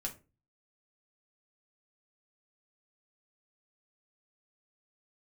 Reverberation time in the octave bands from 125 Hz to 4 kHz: 0.55 s, 0.40 s, 0.35 s, 0.25 s, 0.25 s, 0.20 s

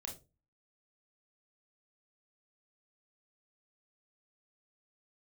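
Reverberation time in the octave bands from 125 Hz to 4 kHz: 0.50 s, 0.40 s, 0.35 s, 0.25 s, 0.20 s, 0.20 s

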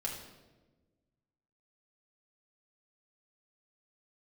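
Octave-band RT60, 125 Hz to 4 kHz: 1.9 s, 1.7 s, 1.5 s, 1.0 s, 0.90 s, 0.85 s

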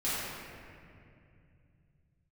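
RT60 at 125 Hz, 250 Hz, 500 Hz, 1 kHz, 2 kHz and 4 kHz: 4.9 s, 3.5 s, 2.7 s, 2.2 s, 2.3 s, 1.5 s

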